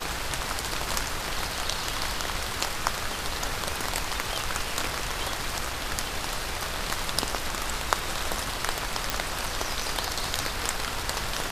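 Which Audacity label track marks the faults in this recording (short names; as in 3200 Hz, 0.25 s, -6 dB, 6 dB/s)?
9.100000	9.100000	pop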